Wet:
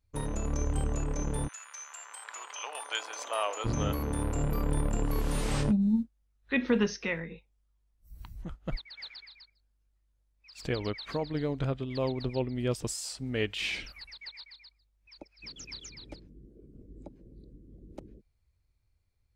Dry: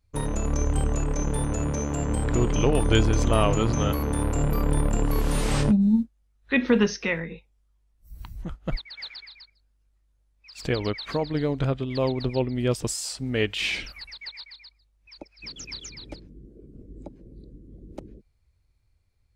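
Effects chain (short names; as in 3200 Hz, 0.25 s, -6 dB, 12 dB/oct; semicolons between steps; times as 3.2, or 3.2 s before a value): 1.47–3.64 HPF 1400 Hz -> 540 Hz 24 dB/oct; gain -6 dB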